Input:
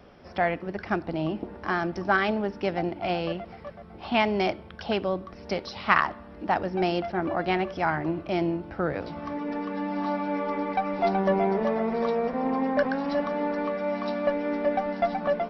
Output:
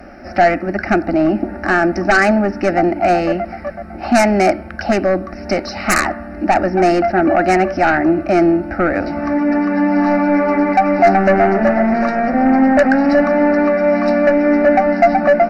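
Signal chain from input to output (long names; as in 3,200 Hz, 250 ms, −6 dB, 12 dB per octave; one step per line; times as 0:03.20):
sine wavefolder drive 14 dB, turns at −4.5 dBFS
phaser with its sweep stopped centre 680 Hz, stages 8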